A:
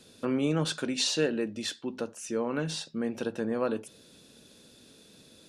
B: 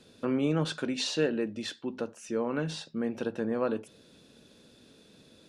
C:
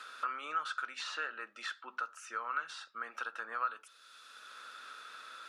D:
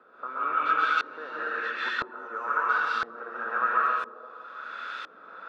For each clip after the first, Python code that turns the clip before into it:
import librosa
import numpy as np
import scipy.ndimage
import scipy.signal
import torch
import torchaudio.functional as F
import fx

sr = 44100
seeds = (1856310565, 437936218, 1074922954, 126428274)

y1 = fx.high_shelf(x, sr, hz=5500.0, db=-11.0)
y2 = fx.highpass_res(y1, sr, hz=1300.0, q=11.0)
y2 = fx.band_squash(y2, sr, depth_pct=70)
y2 = y2 * 10.0 ** (-7.0 / 20.0)
y3 = fx.rev_plate(y2, sr, seeds[0], rt60_s=2.1, hf_ratio=0.9, predelay_ms=115, drr_db=-5.0)
y3 = fx.filter_lfo_lowpass(y3, sr, shape='saw_up', hz=0.99, low_hz=450.0, high_hz=3600.0, q=0.82)
y3 = y3 * 10.0 ** (7.5 / 20.0)